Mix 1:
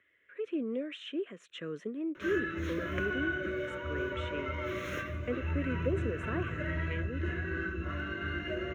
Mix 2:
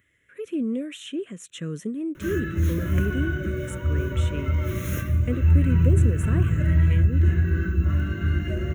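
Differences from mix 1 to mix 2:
speech: add treble shelf 3.4 kHz +7.5 dB; master: remove three-band isolator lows -18 dB, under 340 Hz, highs -23 dB, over 4.7 kHz

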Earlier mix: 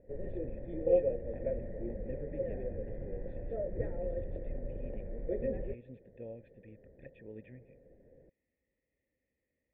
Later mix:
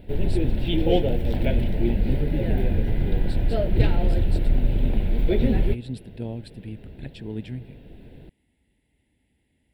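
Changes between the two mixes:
background: remove boxcar filter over 16 samples; master: remove cascade formant filter e

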